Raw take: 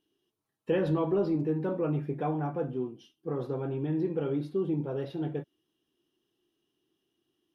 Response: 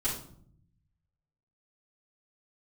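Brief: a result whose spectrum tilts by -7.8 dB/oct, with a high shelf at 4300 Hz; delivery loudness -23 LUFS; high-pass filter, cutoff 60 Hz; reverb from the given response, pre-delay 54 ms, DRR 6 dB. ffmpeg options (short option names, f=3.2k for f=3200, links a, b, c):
-filter_complex "[0:a]highpass=60,highshelf=f=4.3k:g=9,asplit=2[a][b];[1:a]atrim=start_sample=2205,adelay=54[c];[b][c]afir=irnorm=-1:irlink=0,volume=-11.5dB[d];[a][d]amix=inputs=2:normalize=0,volume=6.5dB"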